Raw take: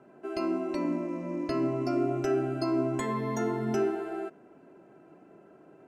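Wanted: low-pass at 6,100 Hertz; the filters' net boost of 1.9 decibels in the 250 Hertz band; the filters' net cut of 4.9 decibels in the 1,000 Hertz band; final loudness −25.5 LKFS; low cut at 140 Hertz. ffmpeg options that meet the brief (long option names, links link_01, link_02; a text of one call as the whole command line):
ffmpeg -i in.wav -af "highpass=140,lowpass=6100,equalizer=frequency=250:width_type=o:gain=3.5,equalizer=frequency=1000:width_type=o:gain=-7,volume=4dB" out.wav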